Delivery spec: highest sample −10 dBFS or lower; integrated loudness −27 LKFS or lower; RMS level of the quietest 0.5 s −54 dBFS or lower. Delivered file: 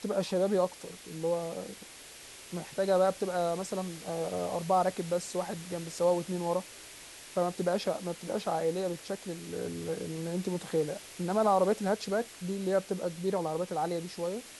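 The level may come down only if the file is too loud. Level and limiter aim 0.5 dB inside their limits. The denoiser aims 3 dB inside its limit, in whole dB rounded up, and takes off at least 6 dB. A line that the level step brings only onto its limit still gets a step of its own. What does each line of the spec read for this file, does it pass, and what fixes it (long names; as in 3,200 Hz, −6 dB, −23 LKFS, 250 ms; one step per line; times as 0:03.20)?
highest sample −15.0 dBFS: in spec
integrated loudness −32.0 LKFS: in spec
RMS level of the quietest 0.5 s −49 dBFS: out of spec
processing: broadband denoise 8 dB, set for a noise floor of −49 dBFS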